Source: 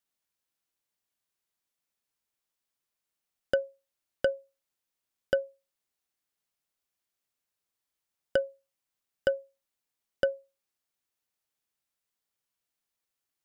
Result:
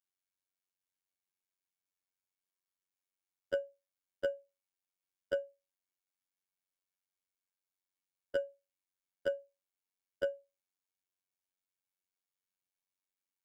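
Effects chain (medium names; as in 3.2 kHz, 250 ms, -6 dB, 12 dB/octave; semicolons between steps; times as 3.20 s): dynamic bell 340 Hz, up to +5 dB, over -39 dBFS, Q 0.87; robot voice 93.2 Hz; feedback comb 320 Hz, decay 0.16 s, harmonics odd, mix 70%; trim +1.5 dB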